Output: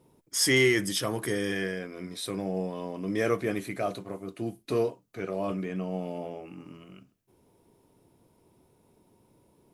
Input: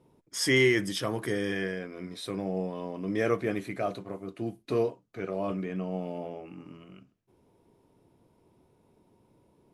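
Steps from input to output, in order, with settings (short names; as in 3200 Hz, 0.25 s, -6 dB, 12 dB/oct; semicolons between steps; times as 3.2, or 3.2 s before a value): high shelf 6300 Hz +10.5 dB; in parallel at -9 dB: soft clip -19.5 dBFS, distortion -14 dB; on the sum: gain -2 dB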